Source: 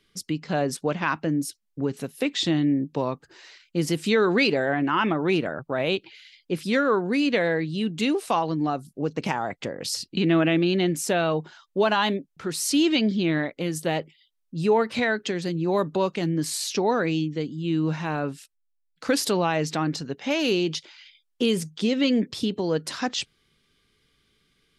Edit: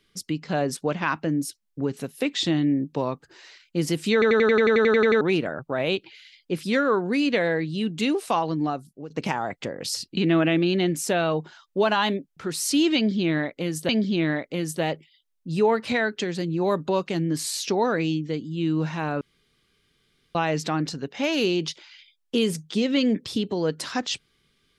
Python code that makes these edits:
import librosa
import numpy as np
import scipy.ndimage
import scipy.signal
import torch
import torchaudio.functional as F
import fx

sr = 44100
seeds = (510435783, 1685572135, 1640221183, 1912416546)

y = fx.edit(x, sr, fx.stutter_over(start_s=4.13, slice_s=0.09, count=12),
    fx.fade_out_to(start_s=8.64, length_s=0.46, floor_db=-14.5),
    fx.repeat(start_s=12.96, length_s=0.93, count=2),
    fx.room_tone_fill(start_s=18.28, length_s=1.14), tone=tone)